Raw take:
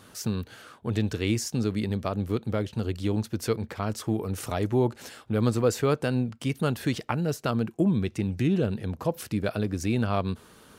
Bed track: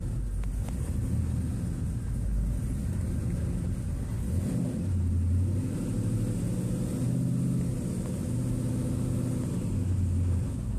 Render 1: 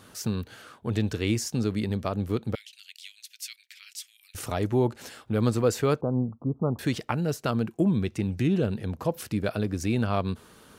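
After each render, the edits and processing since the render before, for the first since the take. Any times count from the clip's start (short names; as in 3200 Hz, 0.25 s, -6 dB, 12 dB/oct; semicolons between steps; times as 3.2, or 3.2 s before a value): 2.55–4.35 steep high-pass 2200 Hz; 6.01–6.79 steep low-pass 1200 Hz 72 dB/oct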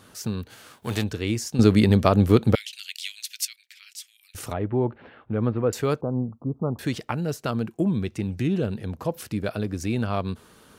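0.49–1.02 spectral whitening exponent 0.6; 1.59–3.45 gain +11 dB; 4.53–5.73 Bessel low-pass 1800 Hz, order 8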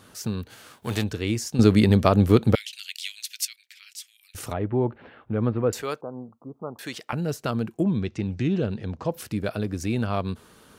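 5.82–7.13 HPF 820 Hz 6 dB/oct; 7.83–9.11 LPF 6800 Hz 24 dB/oct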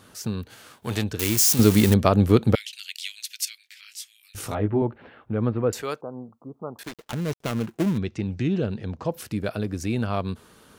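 1.19–1.94 switching spikes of -13 dBFS; 3.45–4.82 doubler 19 ms -2.5 dB; 6.83–7.98 switching dead time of 0.27 ms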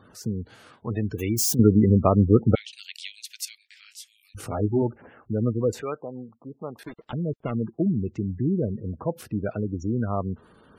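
high shelf 2100 Hz -5.5 dB; spectral gate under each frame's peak -20 dB strong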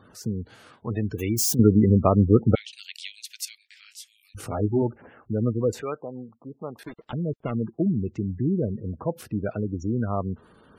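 nothing audible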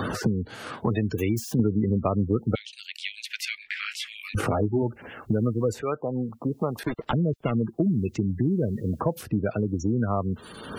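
three-band squash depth 100%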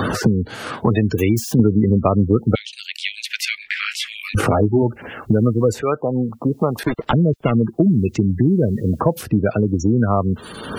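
gain +8.5 dB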